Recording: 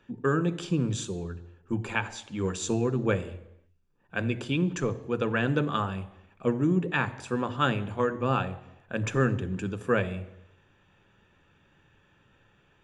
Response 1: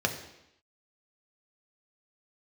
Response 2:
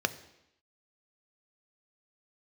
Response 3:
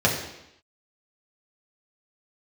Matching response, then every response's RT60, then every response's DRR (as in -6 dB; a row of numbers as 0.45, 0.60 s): 2; 0.85, 0.85, 0.85 s; 3.0, 10.5, -3.5 dB